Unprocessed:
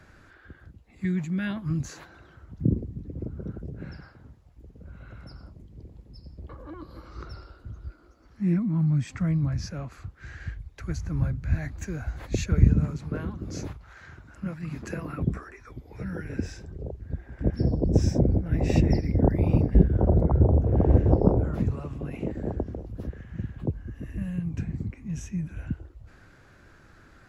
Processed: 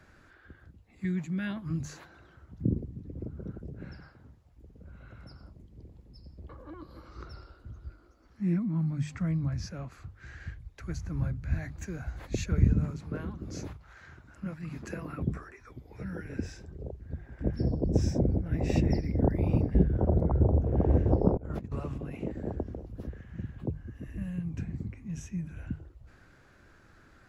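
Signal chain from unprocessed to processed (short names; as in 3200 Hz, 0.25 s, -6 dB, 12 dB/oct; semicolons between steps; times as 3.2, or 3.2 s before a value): notches 50/100/150 Hz; 21.37–21.98 negative-ratio compressor -31 dBFS, ratio -0.5; gain -4 dB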